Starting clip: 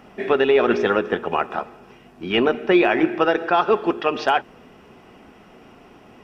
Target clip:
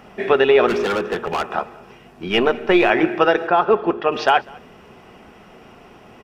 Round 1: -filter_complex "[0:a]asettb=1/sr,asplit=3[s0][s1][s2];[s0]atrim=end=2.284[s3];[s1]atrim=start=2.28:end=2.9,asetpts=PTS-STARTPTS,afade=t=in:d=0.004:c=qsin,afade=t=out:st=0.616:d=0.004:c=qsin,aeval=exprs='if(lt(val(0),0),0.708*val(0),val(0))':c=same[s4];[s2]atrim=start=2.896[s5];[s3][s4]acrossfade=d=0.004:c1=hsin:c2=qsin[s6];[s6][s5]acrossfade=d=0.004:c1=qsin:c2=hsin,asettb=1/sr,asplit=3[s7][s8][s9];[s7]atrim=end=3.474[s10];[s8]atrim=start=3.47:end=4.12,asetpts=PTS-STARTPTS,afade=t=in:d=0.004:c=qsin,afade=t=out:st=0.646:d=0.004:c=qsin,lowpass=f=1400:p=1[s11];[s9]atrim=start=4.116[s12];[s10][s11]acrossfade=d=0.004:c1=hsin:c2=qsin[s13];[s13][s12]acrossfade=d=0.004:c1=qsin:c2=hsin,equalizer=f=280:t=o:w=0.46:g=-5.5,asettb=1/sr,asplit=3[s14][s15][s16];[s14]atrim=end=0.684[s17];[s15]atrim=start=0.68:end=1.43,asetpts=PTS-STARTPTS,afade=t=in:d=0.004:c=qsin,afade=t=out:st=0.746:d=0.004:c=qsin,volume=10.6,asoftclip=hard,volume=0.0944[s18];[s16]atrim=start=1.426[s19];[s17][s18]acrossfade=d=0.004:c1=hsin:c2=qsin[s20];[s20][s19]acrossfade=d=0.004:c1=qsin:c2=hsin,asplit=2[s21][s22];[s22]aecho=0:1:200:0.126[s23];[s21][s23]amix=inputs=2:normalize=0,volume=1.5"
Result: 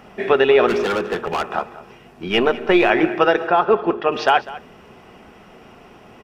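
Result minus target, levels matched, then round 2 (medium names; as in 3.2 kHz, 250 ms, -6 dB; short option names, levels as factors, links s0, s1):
echo-to-direct +8 dB
-filter_complex "[0:a]asettb=1/sr,asplit=3[s0][s1][s2];[s0]atrim=end=2.284[s3];[s1]atrim=start=2.28:end=2.9,asetpts=PTS-STARTPTS,afade=t=in:d=0.004:c=qsin,afade=t=out:st=0.616:d=0.004:c=qsin,aeval=exprs='if(lt(val(0),0),0.708*val(0),val(0))':c=same[s4];[s2]atrim=start=2.896[s5];[s3][s4]acrossfade=d=0.004:c1=hsin:c2=qsin[s6];[s6][s5]acrossfade=d=0.004:c1=qsin:c2=hsin,asettb=1/sr,asplit=3[s7][s8][s9];[s7]atrim=end=3.474[s10];[s8]atrim=start=3.47:end=4.12,asetpts=PTS-STARTPTS,afade=t=in:d=0.004:c=qsin,afade=t=out:st=0.646:d=0.004:c=qsin,lowpass=f=1400:p=1[s11];[s9]atrim=start=4.116[s12];[s10][s11]acrossfade=d=0.004:c1=hsin:c2=qsin[s13];[s13][s12]acrossfade=d=0.004:c1=qsin:c2=hsin,equalizer=f=280:t=o:w=0.46:g=-5.5,asettb=1/sr,asplit=3[s14][s15][s16];[s14]atrim=end=0.684[s17];[s15]atrim=start=0.68:end=1.43,asetpts=PTS-STARTPTS,afade=t=in:d=0.004:c=qsin,afade=t=out:st=0.746:d=0.004:c=qsin,volume=10.6,asoftclip=hard,volume=0.0944[s18];[s16]atrim=start=1.426[s19];[s17][s18]acrossfade=d=0.004:c1=hsin:c2=qsin[s20];[s20][s19]acrossfade=d=0.004:c1=qsin:c2=hsin,asplit=2[s21][s22];[s22]aecho=0:1:200:0.0501[s23];[s21][s23]amix=inputs=2:normalize=0,volume=1.5"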